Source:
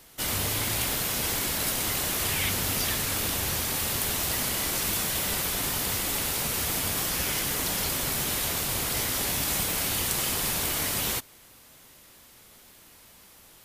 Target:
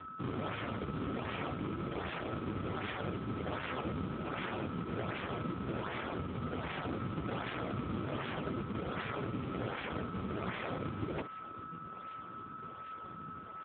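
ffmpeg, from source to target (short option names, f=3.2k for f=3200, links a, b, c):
-af "acrusher=samples=38:mix=1:aa=0.000001:lfo=1:lforange=60.8:lforate=1.3,lowshelf=f=100:g=6.5,aecho=1:1:71:0.112,areverse,acompressor=threshold=-34dB:ratio=16,areverse,equalizer=f=990:t=o:w=0.35:g=-3,aeval=exprs='val(0)+0.00501*sin(2*PI*1300*n/s)':c=same,volume=4.5dB" -ar 8000 -c:a libopencore_amrnb -b:a 5150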